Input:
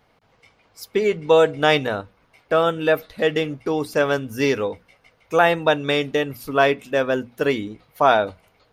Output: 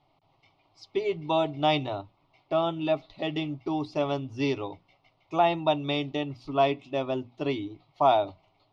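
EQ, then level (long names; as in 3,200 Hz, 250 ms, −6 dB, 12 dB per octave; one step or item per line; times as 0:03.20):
low-pass filter 4,500 Hz 24 dB per octave
phaser with its sweep stopped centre 320 Hz, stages 8
−3.5 dB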